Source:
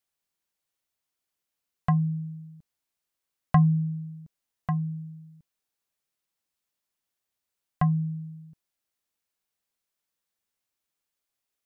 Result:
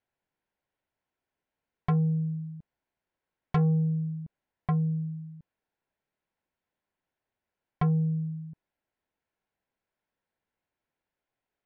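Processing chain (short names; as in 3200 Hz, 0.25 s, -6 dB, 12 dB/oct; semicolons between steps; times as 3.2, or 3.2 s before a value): LPF 1700 Hz 12 dB/oct; notch 1200 Hz, Q 5.5; in parallel at +1 dB: compressor, threshold -31 dBFS, peak gain reduction 14.5 dB; on the sum: soft clip -20.5 dBFS, distortion -10 dB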